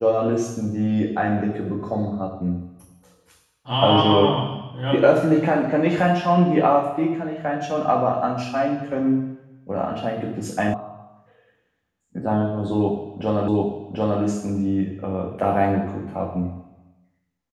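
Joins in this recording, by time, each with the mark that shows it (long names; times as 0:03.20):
0:10.74: cut off before it has died away
0:13.48: the same again, the last 0.74 s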